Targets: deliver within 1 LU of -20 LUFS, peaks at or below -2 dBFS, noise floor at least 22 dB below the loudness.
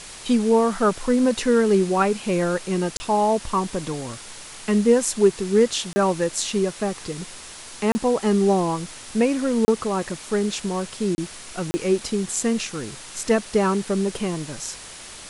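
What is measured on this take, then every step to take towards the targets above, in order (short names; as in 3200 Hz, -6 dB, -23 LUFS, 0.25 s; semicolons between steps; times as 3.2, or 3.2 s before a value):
dropouts 6; longest dropout 30 ms; noise floor -40 dBFS; noise floor target -45 dBFS; loudness -22.5 LUFS; peak -5.5 dBFS; loudness target -20.0 LUFS
-> interpolate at 2.97/5.93/7.92/9.65/11.15/11.71, 30 ms; noise print and reduce 6 dB; gain +2.5 dB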